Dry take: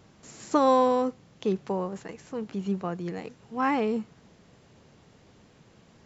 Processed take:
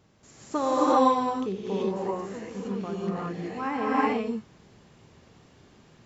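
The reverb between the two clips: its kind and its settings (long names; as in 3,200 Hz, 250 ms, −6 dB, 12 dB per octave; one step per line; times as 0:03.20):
reverb whose tail is shaped and stops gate 410 ms rising, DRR −7.5 dB
level −6.5 dB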